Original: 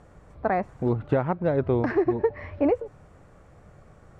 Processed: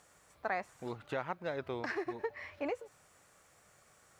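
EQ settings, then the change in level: differentiator; low shelf 150 Hz +9 dB; +8.0 dB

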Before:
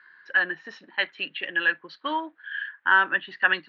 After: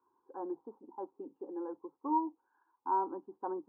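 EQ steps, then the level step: elliptic low-pass 920 Hz, stop band 50 dB; air absorption 480 m; fixed phaser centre 620 Hz, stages 6; +2.0 dB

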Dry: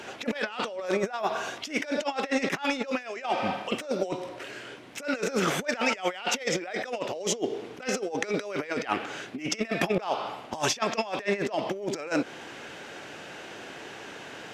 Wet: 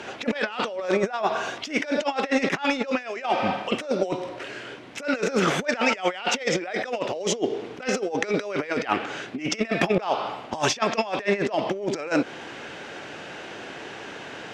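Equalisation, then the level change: air absorption 54 m; +4.5 dB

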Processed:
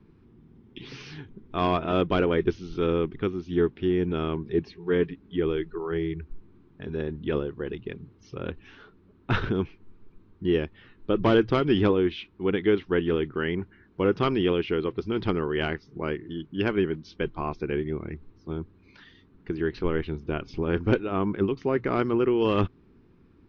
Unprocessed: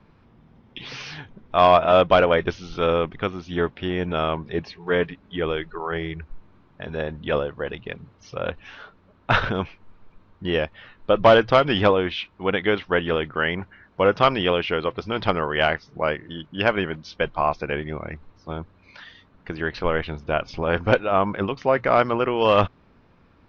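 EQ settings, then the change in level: resonant low shelf 470 Hz +7 dB, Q 3; -8.5 dB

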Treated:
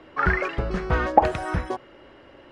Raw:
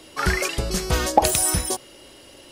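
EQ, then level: synth low-pass 1600 Hz, resonance Q 1.5; -1.0 dB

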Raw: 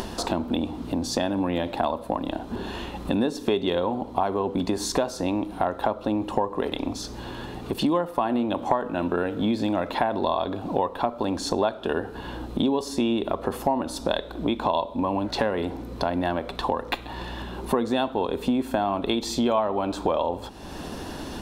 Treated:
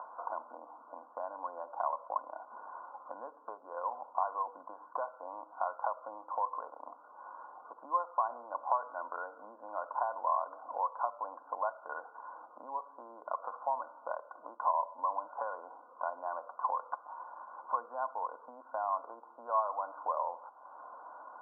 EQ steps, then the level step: HPF 570 Hz 24 dB/oct; rippled Chebyshev low-pass 1500 Hz, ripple 9 dB; fixed phaser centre 950 Hz, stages 4; 0.0 dB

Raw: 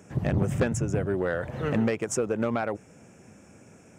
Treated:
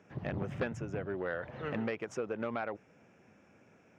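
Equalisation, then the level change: air absorption 280 m; tilt +2.5 dB/oct; -5.5 dB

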